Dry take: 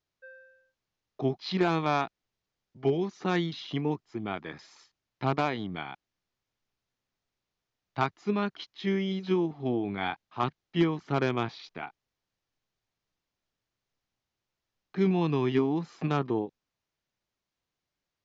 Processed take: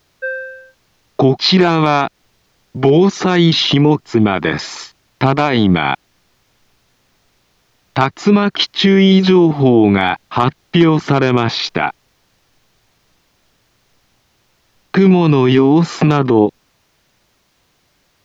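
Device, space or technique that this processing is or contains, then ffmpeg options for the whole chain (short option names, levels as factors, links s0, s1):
loud club master: -af "acompressor=threshold=0.0316:ratio=2.5,asoftclip=type=hard:threshold=0.0944,alimiter=level_in=28.2:limit=0.891:release=50:level=0:latency=1,volume=0.841"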